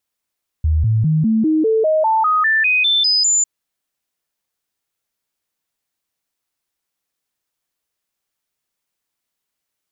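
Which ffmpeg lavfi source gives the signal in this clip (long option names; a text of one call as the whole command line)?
ffmpeg -f lavfi -i "aevalsrc='0.251*clip(min(mod(t,0.2),0.2-mod(t,0.2))/0.005,0,1)*sin(2*PI*78.2*pow(2,floor(t/0.2)/2)*mod(t,0.2))':duration=2.8:sample_rate=44100" out.wav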